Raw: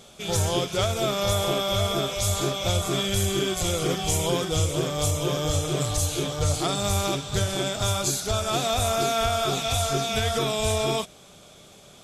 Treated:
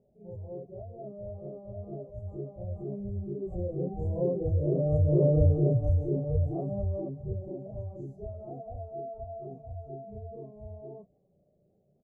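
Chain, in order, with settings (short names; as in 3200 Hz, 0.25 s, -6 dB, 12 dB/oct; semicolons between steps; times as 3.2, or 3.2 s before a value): spectral contrast raised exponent 1.6; Doppler pass-by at 5.33, 6 m/s, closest 3.4 m; inverse Chebyshev low-pass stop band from 1300 Hz, stop band 40 dB; doubler 15 ms -13 dB; on a send: reverse echo 34 ms -4.5 dB; on the sum: gain +1.5 dB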